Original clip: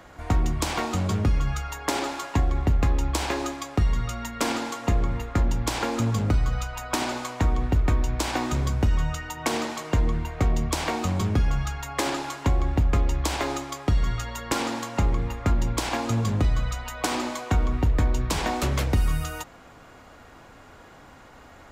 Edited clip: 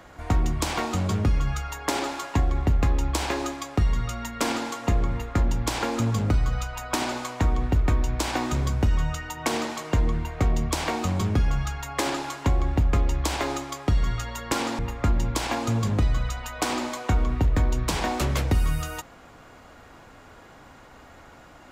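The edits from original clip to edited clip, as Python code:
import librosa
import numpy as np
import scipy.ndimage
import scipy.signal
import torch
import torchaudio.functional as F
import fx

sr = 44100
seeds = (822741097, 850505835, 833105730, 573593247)

y = fx.edit(x, sr, fx.cut(start_s=14.79, length_s=0.42), tone=tone)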